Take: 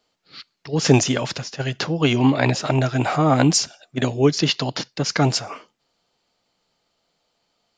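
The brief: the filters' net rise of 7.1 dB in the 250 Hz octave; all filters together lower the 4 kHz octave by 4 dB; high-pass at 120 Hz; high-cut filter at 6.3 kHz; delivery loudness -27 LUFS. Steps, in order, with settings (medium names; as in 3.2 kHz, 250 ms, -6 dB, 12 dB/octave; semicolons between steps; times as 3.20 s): high-pass 120 Hz; low-pass 6.3 kHz; peaking EQ 250 Hz +8.5 dB; peaking EQ 4 kHz -4.5 dB; trim -10.5 dB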